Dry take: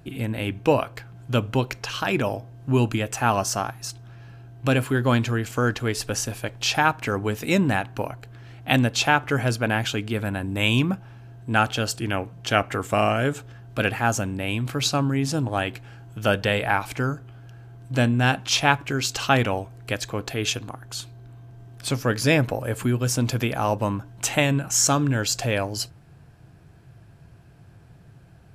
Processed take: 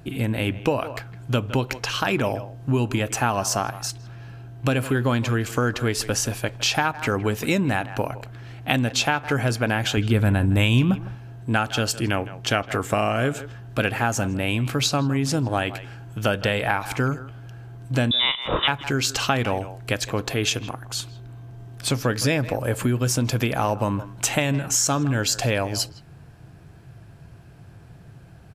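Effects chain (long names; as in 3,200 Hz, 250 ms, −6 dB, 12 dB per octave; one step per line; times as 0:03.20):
0:18.11–0:18.68: voice inversion scrambler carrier 3,700 Hz
far-end echo of a speakerphone 160 ms, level −17 dB
downward compressor 6 to 1, threshold −22 dBFS, peak gain reduction 10 dB
0:09.97–0:11.15: low-shelf EQ 140 Hz +11 dB
level +4 dB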